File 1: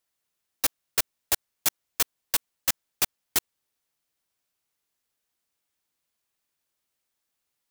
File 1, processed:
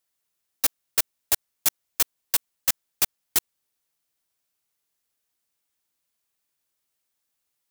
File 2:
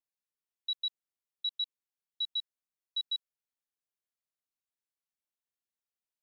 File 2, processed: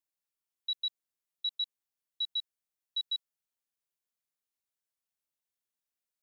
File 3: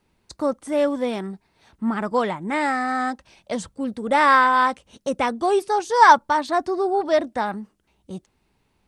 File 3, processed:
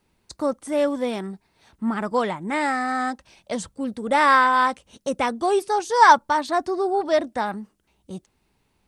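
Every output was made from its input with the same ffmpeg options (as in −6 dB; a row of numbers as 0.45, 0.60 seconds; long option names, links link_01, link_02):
-af "highshelf=frequency=5900:gain=4.5,volume=-1dB"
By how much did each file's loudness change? +2.5, +0.5, −1.0 LU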